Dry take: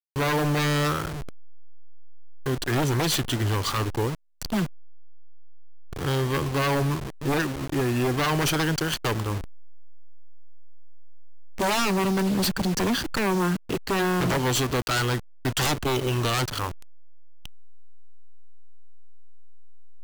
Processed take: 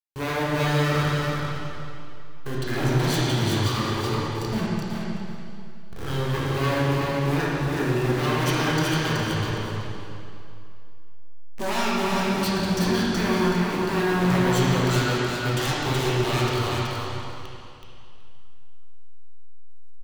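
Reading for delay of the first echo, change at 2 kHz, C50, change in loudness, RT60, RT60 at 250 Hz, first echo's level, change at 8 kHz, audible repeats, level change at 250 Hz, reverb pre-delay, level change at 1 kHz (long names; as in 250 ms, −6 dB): 375 ms, +1.5 dB, −5.0 dB, +1.0 dB, 2.5 s, 2.5 s, −4.0 dB, −2.5 dB, 1, +2.0 dB, 7 ms, +1.5 dB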